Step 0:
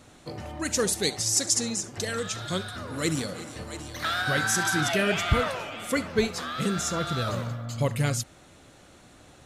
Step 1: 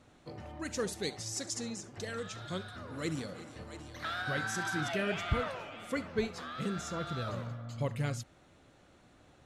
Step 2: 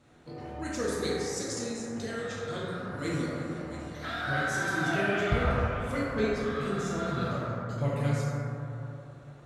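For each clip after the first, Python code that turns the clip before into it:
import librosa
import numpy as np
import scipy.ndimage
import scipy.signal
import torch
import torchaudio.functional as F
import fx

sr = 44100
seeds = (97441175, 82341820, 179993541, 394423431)

y1 = fx.lowpass(x, sr, hz=3300.0, slope=6)
y1 = y1 * 10.0 ** (-8.0 / 20.0)
y2 = fx.cheby_harmonics(y1, sr, harmonics=(3, 5), levels_db=(-17, -31), full_scale_db=-20.0)
y2 = fx.rev_plate(y2, sr, seeds[0], rt60_s=3.1, hf_ratio=0.25, predelay_ms=0, drr_db=-7.0)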